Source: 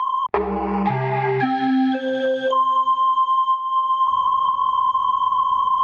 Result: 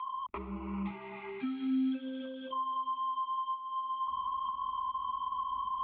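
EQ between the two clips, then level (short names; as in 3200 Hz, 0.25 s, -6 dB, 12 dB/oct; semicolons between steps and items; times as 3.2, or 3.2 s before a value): air absorption 430 m; fixed phaser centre 320 Hz, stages 4; fixed phaser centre 1700 Hz, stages 6; -6.0 dB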